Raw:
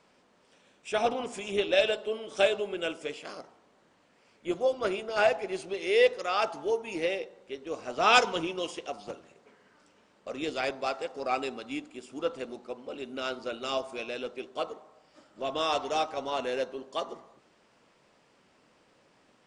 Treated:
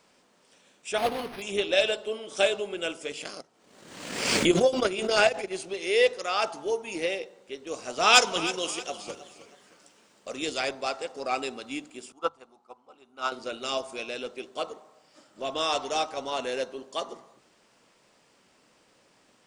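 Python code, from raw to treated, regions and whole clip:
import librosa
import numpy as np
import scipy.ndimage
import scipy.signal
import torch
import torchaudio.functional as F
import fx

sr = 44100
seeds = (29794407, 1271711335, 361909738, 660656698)

y = fx.chain(x, sr, fx.block_float(bits=3),
    fx.resample_linear(factor=6), at=(0.98, 1.42))
y = fx.chain(y, sr, fx.peak_eq(hz=900.0, db=-5.0, octaves=1.5),
    fx.transient(attack_db=10, sustain_db=-8),
    fx.pre_swell(db_per_s=52.0), at=(3.11, 5.51))
y = fx.chain(y, sr, fx.high_shelf(hz=4000.0, db=6.0),
    fx.echo_warbled(ms=315, feedback_pct=36, rate_hz=2.8, cents=66, wet_db=-14.5), at=(7.67, 10.63))
y = fx.chain(y, sr, fx.band_shelf(hz=1000.0, db=12.5, octaves=1.1),
    fx.upward_expand(threshold_db=-36.0, expansion=2.5), at=(12.12, 13.32))
y = fx.high_shelf(y, sr, hz=5000.0, db=11.0)
y = fx.hum_notches(y, sr, base_hz=50, count=3)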